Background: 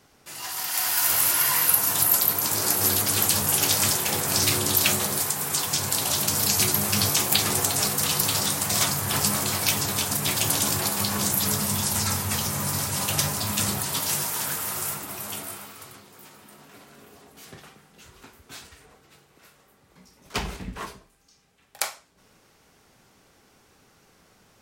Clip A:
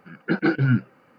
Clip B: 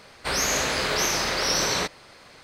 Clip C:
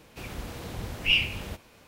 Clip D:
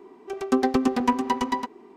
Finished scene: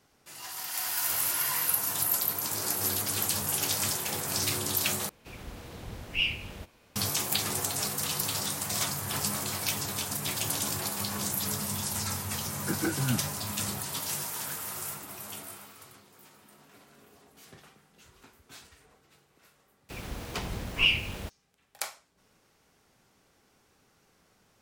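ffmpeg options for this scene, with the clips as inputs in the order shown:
ffmpeg -i bed.wav -i cue0.wav -i cue1.wav -i cue2.wav -filter_complex "[3:a]asplit=2[link_01][link_02];[0:a]volume=-7.5dB[link_03];[link_02]aeval=exprs='val(0)*gte(abs(val(0)),0.00631)':channel_layout=same[link_04];[link_03]asplit=2[link_05][link_06];[link_05]atrim=end=5.094[link_07];[link_01]atrim=end=1.87,asetpts=PTS-STARTPTS,volume=-5.5dB[link_08];[link_06]atrim=start=6.956[link_09];[1:a]atrim=end=1.18,asetpts=PTS-STARTPTS,volume=-10dB,afade=type=in:duration=0.004:curve=hsin,afade=type=out:start_time=1.176:duration=0.004:curve=hsin,adelay=12390[link_10];[link_04]atrim=end=1.87,asetpts=PTS-STARTPTS,volume=-1dB,afade=type=in:duration=0.004:curve=hsin,afade=type=out:start_time=1.866:duration=0.004:curve=hsin,adelay=19730[link_11];[link_07][link_08]acrossfade=duration=0.004:curve1=hsin:curve2=hsin[link_12];[link_12][link_09]acrossfade=duration=0.004:curve1=hsin:curve2=hsin[link_13];[link_13][link_10][link_11]amix=inputs=3:normalize=0" out.wav

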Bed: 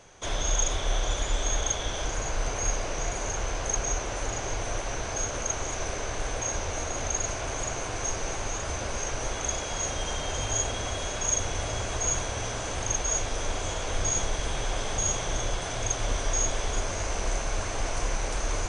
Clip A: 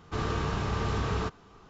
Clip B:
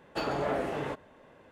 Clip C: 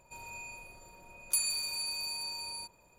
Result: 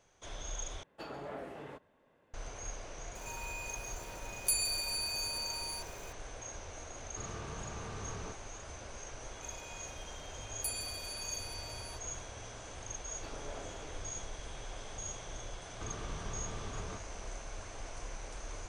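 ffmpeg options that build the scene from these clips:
ffmpeg -i bed.wav -i cue0.wav -i cue1.wav -i cue2.wav -filter_complex "[2:a]asplit=2[link_01][link_02];[3:a]asplit=2[link_03][link_04];[1:a]asplit=2[link_05][link_06];[0:a]volume=-15dB[link_07];[link_03]aeval=exprs='val(0)+0.5*0.00473*sgn(val(0))':channel_layout=same[link_08];[link_06]acompressor=threshold=-36dB:ratio=6:attack=3.2:release=140:knee=1:detection=peak[link_09];[link_07]asplit=2[link_10][link_11];[link_10]atrim=end=0.834[link_12];[link_01]atrim=end=1.51,asetpts=PTS-STARTPTS,volume=-13dB[link_13];[link_11]atrim=start=2.336[link_14];[link_08]atrim=end=2.98,asetpts=PTS-STARTPTS,volume=-1.5dB,afade=type=in:duration=0.004:curve=hsin,afade=type=out:start_time=2.976:duration=0.004:curve=hsin,adelay=3150[link_15];[link_05]atrim=end=1.69,asetpts=PTS-STARTPTS,volume=-14.5dB,afade=type=in:duration=0.004:curve=hsin,afade=type=out:start_time=1.686:duration=0.004:curve=hsin,adelay=7040[link_16];[link_04]atrim=end=2.98,asetpts=PTS-STARTPTS,volume=-8dB,afade=type=in:duration=0.004:curve=hsin,afade=type=out:start_time=2.976:duration=0.004:curve=hsin,adelay=9310[link_17];[link_02]atrim=end=1.51,asetpts=PTS-STARTPTS,volume=-17.5dB,afade=type=in:duration=0.004:curve=hsin,afade=type=out:start_time=1.506:duration=0.004:curve=hsin,adelay=13060[link_18];[link_09]atrim=end=1.69,asetpts=PTS-STARTPTS,volume=-5dB,afade=type=in:duration=0.004:curve=hsin,afade=type=out:start_time=1.686:duration=0.004:curve=hsin,adelay=15690[link_19];[link_12][link_13]acrossfade=duration=0.004:curve1=hsin:curve2=hsin[link_20];[link_20][link_14]acrossfade=duration=0.004:curve1=hsin:curve2=hsin[link_21];[link_21][link_15][link_16][link_17][link_18][link_19]amix=inputs=6:normalize=0" out.wav

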